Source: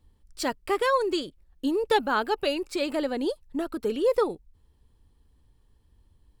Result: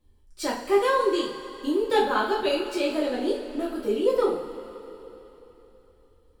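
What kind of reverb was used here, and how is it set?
two-slope reverb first 0.43 s, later 3.6 s, from -16 dB, DRR -6.5 dB; trim -6.5 dB

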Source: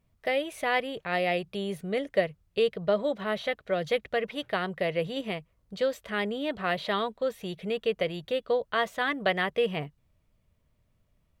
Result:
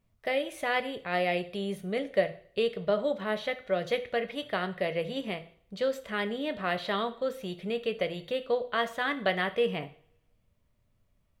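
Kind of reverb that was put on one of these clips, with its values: two-slope reverb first 0.48 s, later 1.5 s, from -27 dB, DRR 9 dB; trim -2 dB

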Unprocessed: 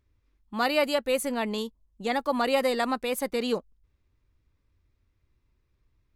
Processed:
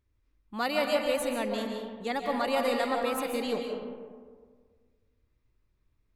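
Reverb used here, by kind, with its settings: algorithmic reverb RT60 1.7 s, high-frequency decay 0.4×, pre-delay 100 ms, DRR 2 dB; trim -4.5 dB

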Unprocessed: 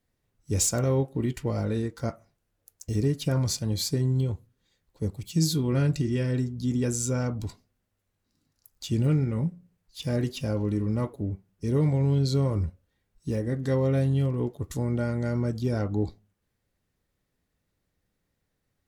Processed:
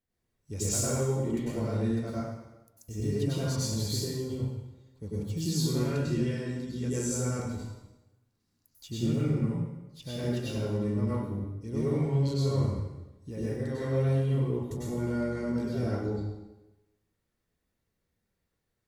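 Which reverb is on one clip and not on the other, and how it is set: plate-style reverb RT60 1 s, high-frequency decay 0.9×, pre-delay 85 ms, DRR -8.5 dB; trim -11.5 dB

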